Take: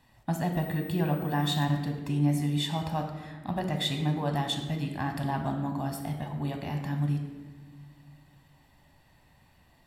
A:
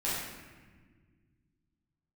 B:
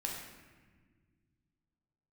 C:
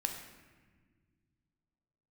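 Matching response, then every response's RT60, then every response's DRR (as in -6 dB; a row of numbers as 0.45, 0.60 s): C; 1.5 s, not exponential, not exponential; -9.5, -1.0, 4.0 dB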